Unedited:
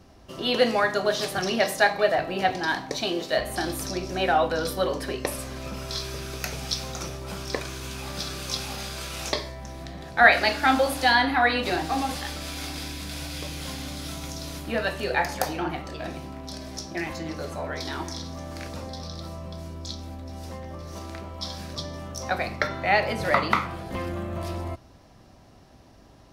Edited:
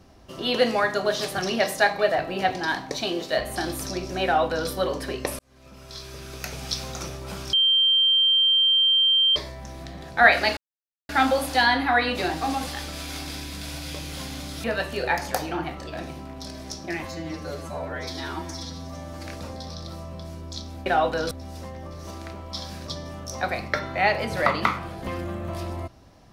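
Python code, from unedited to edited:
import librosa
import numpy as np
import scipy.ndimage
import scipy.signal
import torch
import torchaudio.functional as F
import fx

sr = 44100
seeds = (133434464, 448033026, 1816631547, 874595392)

y = fx.edit(x, sr, fx.duplicate(start_s=4.24, length_s=0.45, to_s=20.19),
    fx.fade_in_span(start_s=5.39, length_s=1.4),
    fx.bleep(start_s=7.53, length_s=1.83, hz=3150.0, db=-16.0),
    fx.insert_silence(at_s=10.57, length_s=0.52),
    fx.cut(start_s=14.12, length_s=0.59),
    fx.stretch_span(start_s=17.12, length_s=1.48, factor=1.5), tone=tone)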